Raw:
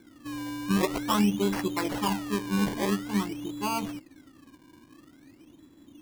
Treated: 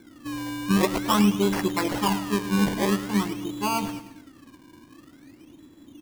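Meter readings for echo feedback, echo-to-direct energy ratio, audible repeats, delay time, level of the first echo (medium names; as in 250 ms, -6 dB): 46%, -12.5 dB, 4, 107 ms, -13.5 dB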